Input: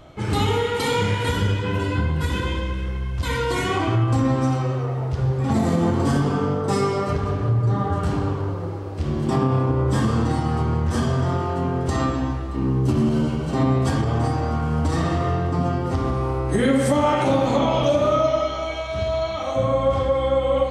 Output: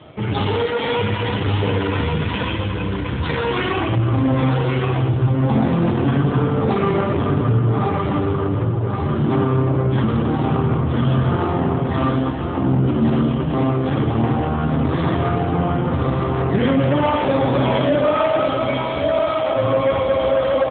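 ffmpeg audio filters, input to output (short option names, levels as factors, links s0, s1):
-filter_complex "[0:a]asplit=2[s0][s1];[s1]adelay=376,lowpass=f=2000:p=1,volume=0.112,asplit=2[s2][s3];[s3]adelay=376,lowpass=f=2000:p=1,volume=0.42,asplit=2[s4][s5];[s5]adelay=376,lowpass=f=2000:p=1,volume=0.42[s6];[s2][s4][s6]amix=inputs=3:normalize=0[s7];[s0][s7]amix=inputs=2:normalize=0,asoftclip=type=tanh:threshold=0.106,aemphasis=mode=production:type=50kf,asplit=2[s8][s9];[s9]aecho=0:1:1129|2258|3387|4516:0.596|0.203|0.0689|0.0234[s10];[s8][s10]amix=inputs=2:normalize=0,volume=2.11" -ar 8000 -c:a libopencore_amrnb -b:a 7400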